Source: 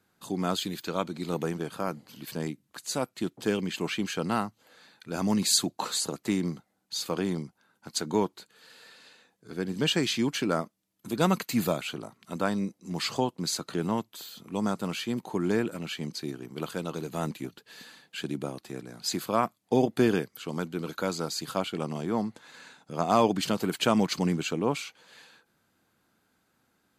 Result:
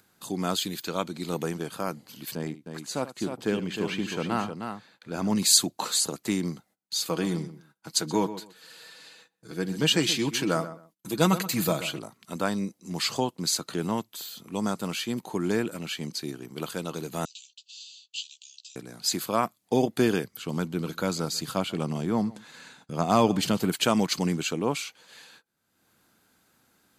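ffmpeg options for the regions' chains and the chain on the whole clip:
ffmpeg -i in.wav -filter_complex "[0:a]asettb=1/sr,asplit=3[link_01][link_02][link_03];[link_01]atrim=end=2.354[link_04];[link_02]atrim=start=2.35:end=5.36,asetpts=PTS-STARTPTS,afade=type=in:duration=0.004:curve=qsin,afade=type=out:start_time=3.006:duration=0.004:curve=qsin,highshelf=frequency=4300:gain=-11.5,aecho=1:1:77|310:0.178|0.447,atrim=end_sample=132741[link_05];[link_03]atrim=start=5.356[link_06];[link_04][link_05]acrossfade=duration=0.004:curve1=hsin:curve2=qsin[link_07];[link_07][link_06]acrossfade=duration=0.004:curve1=qsin:curve2=hsin,asettb=1/sr,asplit=3[link_08][link_09][link_10];[link_08]atrim=end=7.074[link_11];[link_09]atrim=start=7.07:end=11.99,asetpts=PTS-STARTPTS,afade=type=in:duration=0.004:curve=qsin,afade=type=out:start_time=4.916:duration=0.004:curve=qsin,aecho=1:1:6.2:0.47,atrim=end_sample=216972,asplit=2[link_12][link_13];[link_13]adelay=128,lowpass=frequency=2400:poles=1,volume=-12.5dB,asplit=2[link_14][link_15];[link_15]adelay=128,lowpass=frequency=2400:poles=1,volume=0.2[link_16];[link_12][link_14][link_16]amix=inputs=3:normalize=0,atrim=end_sample=216972[link_17];[link_10]atrim=start=11.986[link_18];[link_11][link_17]acrossfade=duration=0.004:curve1=hsin:curve2=qsin[link_19];[link_19][link_18]acrossfade=duration=0.004:curve1=qsin:curve2=hsin,asettb=1/sr,asplit=3[link_20][link_21][link_22];[link_20]atrim=end=17.254[link_23];[link_21]atrim=start=17.25:end=18.76,asetpts=PTS-STARTPTS,afade=type=in:duration=0.004:curve=qsin,afade=type=out:start_time=1.506:duration=0.004:curve=qsin,asuperpass=centerf=4600:order=20:qfactor=0.93,highshelf=frequency=5300:gain=3.5,asplit=2[link_24][link_25];[link_25]adelay=16,volume=-5dB[link_26];[link_24][link_26]amix=inputs=2:normalize=0,atrim=end_sample=66591[link_27];[link_22]atrim=start=18.756[link_28];[link_23][link_27]acrossfade=duration=0.004:curve1=hsin:curve2=qsin[link_29];[link_29][link_28]acrossfade=duration=0.004:curve1=qsin:curve2=hsin,asettb=1/sr,asplit=3[link_30][link_31][link_32];[link_30]atrim=end=20.244[link_33];[link_31]atrim=start=20.24:end=23.72,asetpts=PTS-STARTPTS,afade=type=in:duration=0.004:curve=qsin,afade=type=out:start_time=3.476:duration=0.004:curve=qsin,bass=frequency=250:gain=6,treble=frequency=4000:gain=-2,aecho=1:1:142:0.0794,atrim=end_sample=153468[link_34];[link_32]atrim=start=23.716[link_35];[link_33][link_34]acrossfade=duration=0.004:curve1=hsin:curve2=qsin[link_36];[link_36][link_35]acrossfade=duration=0.004:curve1=qsin:curve2=hsin,agate=range=-21dB:threshold=-57dB:ratio=16:detection=peak,highshelf=frequency=3700:gain=6.5,acompressor=mode=upward:threshold=-45dB:ratio=2.5" out.wav

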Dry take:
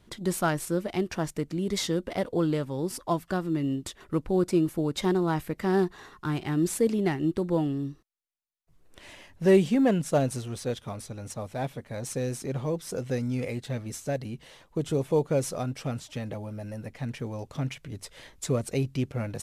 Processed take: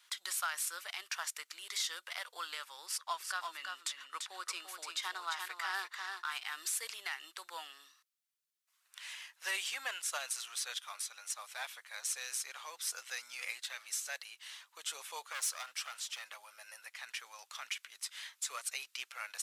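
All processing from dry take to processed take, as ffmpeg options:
ffmpeg -i in.wav -filter_complex "[0:a]asettb=1/sr,asplit=3[link_01][link_02][link_03];[link_01]atrim=end=2.864[link_04];[link_02]atrim=start=2.86:end=6.31,asetpts=PTS-STARTPTS,afade=type=in:duration=0.004:curve=qsin,afade=type=out:start_time=3.446:duration=0.004:curve=qsin,highshelf=frequency=11000:gain=-12,aecho=1:1:342:0.501,atrim=end_sample=152145[link_05];[link_03]atrim=start=6.306[link_06];[link_04][link_05]acrossfade=duration=0.004:curve1=hsin:curve2=qsin[link_07];[link_07][link_06]acrossfade=duration=0.004:curve1=qsin:curve2=hsin,asettb=1/sr,asplit=3[link_08][link_09][link_10];[link_08]atrim=end=15.324[link_11];[link_09]atrim=start=15.32:end=16.36,asetpts=PTS-STARTPTS,afade=type=in:duration=0.004:curve=qsin,afade=type=out:start_time=1.036:duration=0.004:curve=qsin,highpass=78,asoftclip=type=hard:threshold=-30dB[link_12];[link_10]atrim=start=16.356[link_13];[link_11][link_12]acrossfade=duration=0.004:curve1=hsin:curve2=qsin[link_14];[link_14][link_13]acrossfade=duration=0.004:curve1=qsin:curve2=hsin,highpass=frequency=1300:width=0.5412,highpass=frequency=1300:width=1.3066,equalizer=frequency=1900:width=1.5:gain=-3.5,alimiter=level_in=6.5dB:limit=-24dB:level=0:latency=1:release=69,volume=-6.5dB,volume=5dB" out.wav

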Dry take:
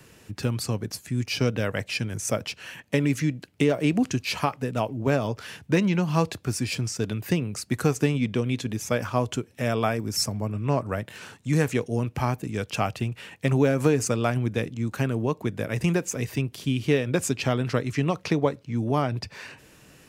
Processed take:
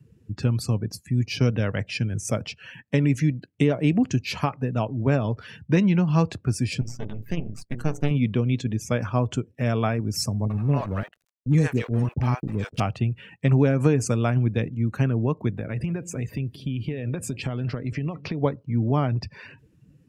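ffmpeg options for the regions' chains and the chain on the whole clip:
ffmpeg -i in.wav -filter_complex "[0:a]asettb=1/sr,asplit=3[link_01][link_02][link_03];[link_01]atrim=end=6.814[link_04];[link_02]atrim=start=6.81:end=8.11,asetpts=PTS-STARTPTS,afade=type=in:duration=0.004:curve=qsin,afade=type=out:start_time=1.296:duration=0.004:curve=qsin,bandreject=frequency=60:width_type=h:width=6,bandreject=frequency=120:width_type=h:width=6,bandreject=frequency=180:width_type=h:width=6,bandreject=frequency=240:width_type=h:width=6,bandreject=frequency=300:width_type=h:width=6,bandreject=frequency=360:width_type=h:width=6,bandreject=frequency=420:width_type=h:width=6,bandreject=frequency=480:width_type=h:width=6,bandreject=frequency=540:width_type=h:width=6,bandreject=frequency=600:width_type=h:width=6,aeval=exprs='max(val(0),0)':channel_layout=same,tremolo=f=150:d=0.4[link_05];[link_03]atrim=start=8.106[link_06];[link_04][link_05]acrossfade=duration=0.004:curve1=hsin:curve2=qsin[link_07];[link_07][link_06]acrossfade=duration=0.004:curve1=qsin:curve2=hsin,asettb=1/sr,asplit=3[link_08][link_09][link_10];[link_08]atrim=end=10.454[link_11];[link_09]atrim=start=10.45:end=12.8,asetpts=PTS-STARTPTS,afade=type=in:duration=0.004:curve=qsin,afade=type=out:start_time=2.346:duration=0.004:curve=qsin,aeval=exprs='val(0)*gte(abs(val(0)),0.0224)':channel_layout=same,acrossover=split=590[link_12][link_13];[link_13]adelay=50[link_14];[link_12][link_14]amix=inputs=2:normalize=0,atrim=end_sample=103635[link_15];[link_10]atrim=start=12.796[link_16];[link_11][link_15]acrossfade=duration=0.004:curve1=hsin:curve2=qsin[link_17];[link_17][link_16]acrossfade=duration=0.004:curve1=qsin:curve2=hsin,asettb=1/sr,asplit=3[link_18][link_19][link_20];[link_18]atrim=end=15.564[link_21];[link_19]atrim=start=15.56:end=18.41,asetpts=PTS-STARTPTS,afade=type=in:duration=0.004:curve=qsin,afade=type=out:start_time=2.846:duration=0.004:curve=qsin,equalizer=frequency=6200:width=3.1:gain=-5,acompressor=threshold=-26dB:ratio=10:attack=3.2:release=140:knee=1:detection=peak,aecho=1:1:184:0.119,atrim=end_sample=125685[link_22];[link_20]atrim=start=18.406[link_23];[link_21][link_22]acrossfade=duration=0.004:curve1=hsin:curve2=qsin[link_24];[link_24][link_23]acrossfade=duration=0.004:curve1=qsin:curve2=hsin,afftdn=noise_reduction=21:noise_floor=-44,bass=frequency=250:gain=7,treble=frequency=4000:gain=-1,volume=-1.5dB" out.wav

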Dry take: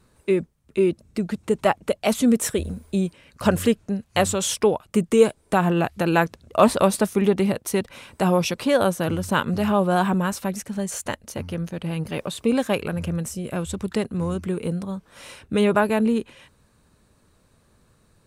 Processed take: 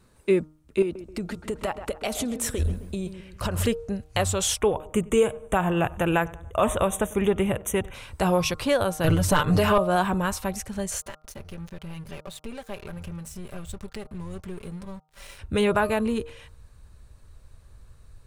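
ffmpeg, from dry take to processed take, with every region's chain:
ffmpeg -i in.wav -filter_complex "[0:a]asettb=1/sr,asplit=3[link_01][link_02][link_03];[link_01]atrim=end=0.824[link_04];[link_02]atrim=start=0.82:end=3.67,asetpts=PTS-STARTPTS,afade=type=in:duration=0.004:curve=qsin,afade=type=out:start_time=2.846:duration=0.004:curve=qsin,acompressor=threshold=-23dB:ratio=6:attack=3.2:release=140:knee=1:detection=peak,asplit=2[link_05][link_06];[link_06]adelay=132,lowpass=frequency=2200:poles=1,volume=-10.5dB,asplit=2[link_07][link_08];[link_08]adelay=132,lowpass=frequency=2200:poles=1,volume=0.43,asplit=2[link_09][link_10];[link_10]adelay=132,lowpass=frequency=2200:poles=1,volume=0.43,asplit=2[link_11][link_12];[link_12]adelay=132,lowpass=frequency=2200:poles=1,volume=0.43,asplit=2[link_13][link_14];[link_14]adelay=132,lowpass=frequency=2200:poles=1,volume=0.43[link_15];[link_05][link_07][link_09][link_11][link_13][link_15]amix=inputs=6:normalize=0,atrim=end_sample=125685[link_16];[link_03]atrim=start=3.666[link_17];[link_04][link_16]acrossfade=duration=0.004:curve1=hsin:curve2=qsin[link_18];[link_18][link_17]acrossfade=duration=0.004:curve1=qsin:curve2=hsin,asettb=1/sr,asplit=3[link_19][link_20][link_21];[link_19]atrim=end=4.614[link_22];[link_20]atrim=start=4.61:end=7.94,asetpts=PTS-STARTPTS,afade=type=in:duration=0.004:curve=qsin,afade=type=out:start_time=3.326:duration=0.004:curve=qsin,asuperstop=centerf=4700:order=12:qfactor=2.1,asplit=2[link_23][link_24];[link_24]adelay=95,lowpass=frequency=2000:poles=1,volume=-22dB,asplit=2[link_25][link_26];[link_26]adelay=95,lowpass=frequency=2000:poles=1,volume=0.49,asplit=2[link_27][link_28];[link_28]adelay=95,lowpass=frequency=2000:poles=1,volume=0.49[link_29];[link_23][link_25][link_27][link_29]amix=inputs=4:normalize=0,atrim=end_sample=146853[link_30];[link_21]atrim=start=7.936[link_31];[link_22][link_30]acrossfade=duration=0.004:curve1=hsin:curve2=qsin[link_32];[link_32][link_31]acrossfade=duration=0.004:curve1=qsin:curve2=hsin,asettb=1/sr,asplit=3[link_33][link_34][link_35];[link_33]atrim=end=9.044[link_36];[link_34]atrim=start=9.04:end=9.78,asetpts=PTS-STARTPTS,afade=type=in:duration=0.004:curve=qsin,afade=type=out:start_time=0.736:duration=0.004:curve=qsin,aecho=1:1:6.7:0.82,atrim=end_sample=32634,acontrast=78[link_37];[link_35]atrim=start=9.776[link_38];[link_36][link_37]acrossfade=duration=0.004:curve1=hsin:curve2=qsin[link_39];[link_39][link_38]acrossfade=duration=0.004:curve1=qsin:curve2=hsin,asettb=1/sr,asplit=3[link_40][link_41][link_42];[link_40]atrim=end=11.004[link_43];[link_41]atrim=start=11:end=15.39,asetpts=PTS-STARTPTS,afade=type=in:duration=0.004:curve=qsin,afade=type=out:start_time=4.386:duration=0.004:curve=qsin,acompressor=threshold=-38dB:ratio=2.5:attack=3.2:release=140:knee=1:detection=peak,aecho=1:1:5.1:0.68,atrim=end_sample=193599,aeval=exprs='sgn(val(0))*max(abs(val(0))-0.00531,0)':channel_layout=same[link_44];[link_42]atrim=start=15.386[link_45];[link_43][link_44]acrossfade=duration=0.004:curve1=hsin:curve2=qsin[link_46];[link_46][link_45]acrossfade=duration=0.004:curve1=qsin:curve2=hsin,bandreject=frequency=154.4:width_type=h:width=4,bandreject=frequency=308.8:width_type=h:width=4,bandreject=frequency=463.2:width_type=h:width=4,bandreject=frequency=617.6:width_type=h:width=4,bandreject=frequency=772:width_type=h:width=4,bandreject=frequency=926.4:width_type=h:width=4,bandreject=frequency=1080.8:width_type=h:width=4,bandreject=frequency=1235.2:width_type=h:width=4,bandreject=frequency=1389.6:width_type=h:width=4,asubboost=boost=11:cutoff=64,alimiter=limit=-11dB:level=0:latency=1:release=219" out.wav

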